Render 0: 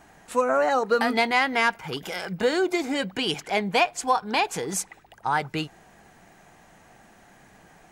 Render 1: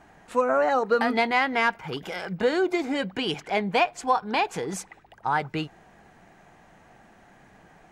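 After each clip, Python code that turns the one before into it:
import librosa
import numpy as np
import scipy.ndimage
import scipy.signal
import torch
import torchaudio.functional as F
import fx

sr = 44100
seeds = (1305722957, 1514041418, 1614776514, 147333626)

y = fx.high_shelf(x, sr, hz=5200.0, db=-12.0)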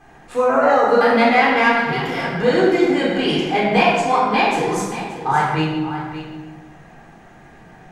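y = x + 10.0 ** (-12.0 / 20.0) * np.pad(x, (int(577 * sr / 1000.0), 0))[:len(x)]
y = fx.room_shoebox(y, sr, seeds[0], volume_m3=930.0, walls='mixed', distance_m=3.8)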